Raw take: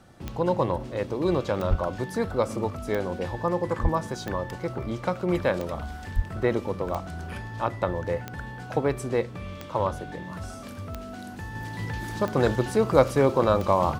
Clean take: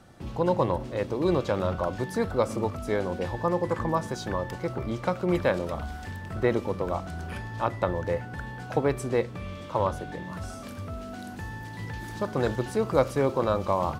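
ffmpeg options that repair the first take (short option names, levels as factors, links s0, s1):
-filter_complex "[0:a]adeclick=t=4,asplit=3[s0][s1][s2];[s0]afade=t=out:st=1.69:d=0.02[s3];[s1]highpass=f=140:w=0.5412,highpass=f=140:w=1.3066,afade=t=in:st=1.69:d=0.02,afade=t=out:st=1.81:d=0.02[s4];[s2]afade=t=in:st=1.81:d=0.02[s5];[s3][s4][s5]amix=inputs=3:normalize=0,asplit=3[s6][s7][s8];[s6]afade=t=out:st=3.82:d=0.02[s9];[s7]highpass=f=140:w=0.5412,highpass=f=140:w=1.3066,afade=t=in:st=3.82:d=0.02,afade=t=out:st=3.94:d=0.02[s10];[s8]afade=t=in:st=3.94:d=0.02[s11];[s9][s10][s11]amix=inputs=3:normalize=0,asplit=3[s12][s13][s14];[s12]afade=t=out:st=6.15:d=0.02[s15];[s13]highpass=f=140:w=0.5412,highpass=f=140:w=1.3066,afade=t=in:st=6.15:d=0.02,afade=t=out:st=6.27:d=0.02[s16];[s14]afade=t=in:st=6.27:d=0.02[s17];[s15][s16][s17]amix=inputs=3:normalize=0,asetnsamples=n=441:p=0,asendcmd='11.55 volume volume -4dB',volume=1"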